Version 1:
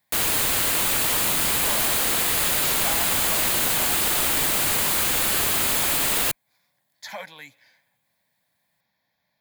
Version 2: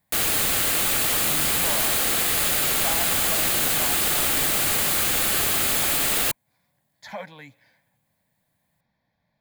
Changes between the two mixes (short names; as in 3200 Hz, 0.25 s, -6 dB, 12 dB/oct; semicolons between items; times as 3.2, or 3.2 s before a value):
speech: add tilt -3 dB/oct; background: add Butterworth band-stop 970 Hz, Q 7.6